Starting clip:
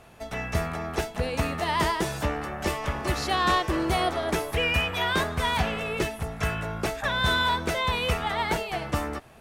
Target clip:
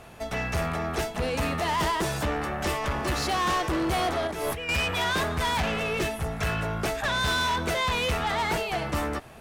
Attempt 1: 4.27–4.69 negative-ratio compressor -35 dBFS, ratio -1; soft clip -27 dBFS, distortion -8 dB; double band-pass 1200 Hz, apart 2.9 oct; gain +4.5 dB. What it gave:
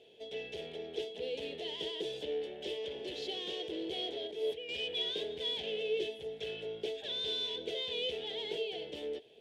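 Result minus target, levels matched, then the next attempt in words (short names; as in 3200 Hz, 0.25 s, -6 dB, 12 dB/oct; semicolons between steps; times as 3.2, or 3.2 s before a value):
1000 Hz band -16.0 dB
4.27–4.69 negative-ratio compressor -35 dBFS, ratio -1; soft clip -27 dBFS, distortion -8 dB; gain +4.5 dB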